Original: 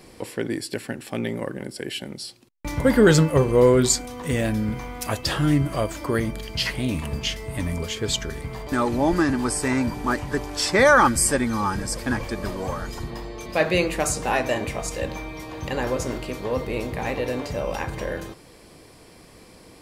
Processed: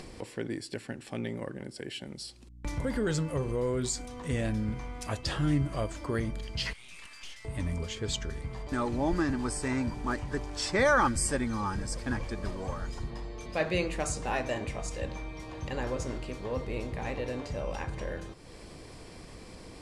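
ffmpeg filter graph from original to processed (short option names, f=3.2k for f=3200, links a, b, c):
-filter_complex "[0:a]asettb=1/sr,asplit=3[a][b][c];[a]atrim=end=2.074[d];[b]atrim=start=2.07:end=4.09,asetpts=PTS-STARTPTS,afade=t=in:d=0.004:c=qsin,afade=t=out:st=2.016:d=0.004:c=qsin,highshelf=f=8.7k:g=7,acompressor=threshold=-23dB:ratio=2:attack=3.2:release=140:knee=1:detection=peak,aeval=exprs='val(0)+0.00158*(sin(2*PI*60*n/s)+sin(2*PI*2*60*n/s)/2+sin(2*PI*3*60*n/s)/3+sin(2*PI*4*60*n/s)/4+sin(2*PI*5*60*n/s)/5)':c=same[e];[c]atrim=start=4.086[f];[d][e]acrossfade=d=0.004:c1=hsin:c2=qsin[g];[g][f]acrossfade=d=0.004:c1=qsin:c2=hsin,asettb=1/sr,asplit=3[h][i][j];[h]atrim=end=6.734[k];[i]atrim=start=6.73:end=7.45,asetpts=PTS-STARTPTS,afade=t=in:d=0.004:c=qsin,afade=t=out:st=0.716:d=0.004:c=qsin,highpass=f=1.4k:w=0.5412,highpass=f=1.4k:w=1.3066,aeval=exprs='(tanh(89.1*val(0)+0.6)-tanh(0.6))/89.1':c=same[l];[j]atrim=start=7.446[m];[k][l]acrossfade=d=0.004:c1=hsin:c2=qsin[n];[n][m]acrossfade=d=0.004:c1=qsin:c2=hsin,lowpass=f=9.5k:w=0.5412,lowpass=f=9.5k:w=1.3066,lowshelf=f=85:g=9.5,acompressor=mode=upward:threshold=-28dB:ratio=2.5,volume=-9dB"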